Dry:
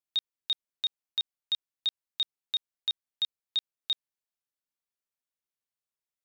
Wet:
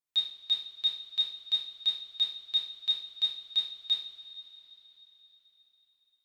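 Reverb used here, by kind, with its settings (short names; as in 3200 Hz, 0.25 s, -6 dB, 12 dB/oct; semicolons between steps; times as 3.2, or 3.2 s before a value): two-slope reverb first 0.48 s, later 4.4 s, from -18 dB, DRR -4.5 dB; gain -5 dB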